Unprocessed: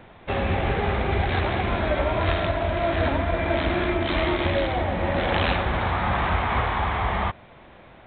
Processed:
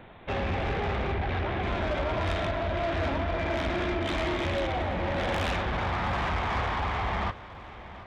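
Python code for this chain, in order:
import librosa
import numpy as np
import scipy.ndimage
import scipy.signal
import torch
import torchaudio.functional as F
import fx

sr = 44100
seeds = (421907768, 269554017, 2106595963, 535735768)

p1 = 10.0 ** (-23.0 / 20.0) * np.tanh(x / 10.0 ** (-23.0 / 20.0))
p2 = fx.air_absorb(p1, sr, metres=200.0, at=(1.11, 1.62), fade=0.02)
p3 = p2 + fx.echo_feedback(p2, sr, ms=729, feedback_pct=42, wet_db=-16.5, dry=0)
y = F.gain(torch.from_numpy(p3), -1.5).numpy()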